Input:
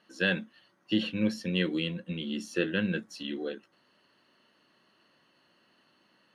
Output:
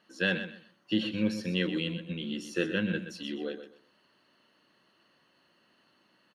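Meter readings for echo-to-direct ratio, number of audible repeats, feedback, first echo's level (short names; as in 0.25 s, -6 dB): -10.5 dB, 2, 23%, -10.5 dB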